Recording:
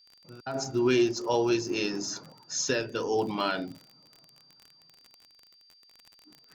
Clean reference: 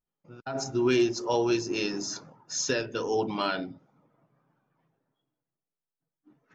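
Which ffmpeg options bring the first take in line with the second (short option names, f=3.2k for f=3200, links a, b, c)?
-af "adeclick=t=4,bandreject=f=4.7k:w=30,agate=range=-21dB:threshold=-52dB"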